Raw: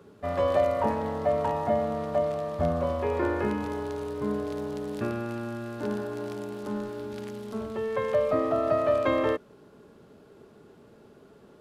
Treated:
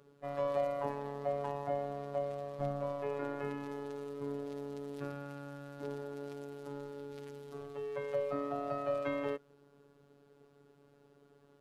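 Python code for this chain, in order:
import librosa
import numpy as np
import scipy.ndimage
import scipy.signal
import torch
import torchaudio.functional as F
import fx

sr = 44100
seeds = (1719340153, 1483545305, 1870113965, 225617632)

y = fx.robotise(x, sr, hz=142.0)
y = F.gain(torch.from_numpy(y), -8.5).numpy()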